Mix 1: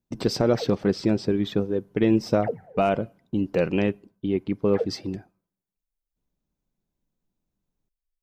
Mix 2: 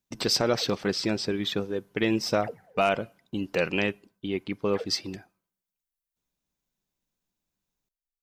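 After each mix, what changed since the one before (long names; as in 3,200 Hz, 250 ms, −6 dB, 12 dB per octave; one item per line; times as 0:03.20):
background −6.0 dB
master: add tilt shelving filter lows −7.5 dB, about 900 Hz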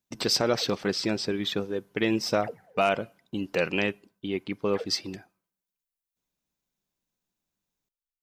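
master: add low-shelf EQ 76 Hz −6 dB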